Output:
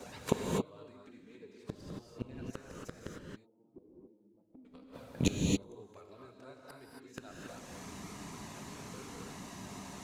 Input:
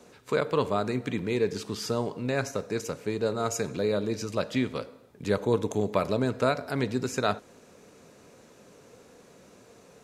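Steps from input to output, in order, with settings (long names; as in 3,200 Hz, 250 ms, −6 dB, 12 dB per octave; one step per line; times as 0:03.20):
in parallel at −5.5 dB: dead-zone distortion −43.5 dBFS
on the sum: gate with flip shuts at −22 dBFS, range −38 dB
0:03.17–0:04.65: formant resonators in series u
flanger swept by the level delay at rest 7.3 ms, full sweep at −46 dBFS
reverb whose tail is shaped and stops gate 300 ms rising, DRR −1 dB
level +8.5 dB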